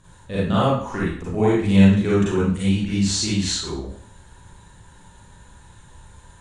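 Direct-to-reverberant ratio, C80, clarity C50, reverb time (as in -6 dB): -9.0 dB, 4.0 dB, -2.5 dB, 0.60 s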